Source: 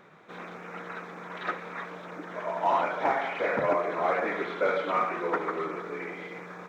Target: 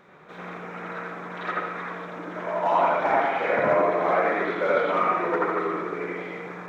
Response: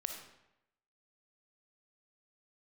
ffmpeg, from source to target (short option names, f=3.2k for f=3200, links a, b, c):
-filter_complex "[0:a]asplit=2[a][b];[1:a]atrim=start_sample=2205,lowpass=2.7k,adelay=84[c];[b][c]afir=irnorm=-1:irlink=0,volume=3.5dB[d];[a][d]amix=inputs=2:normalize=0"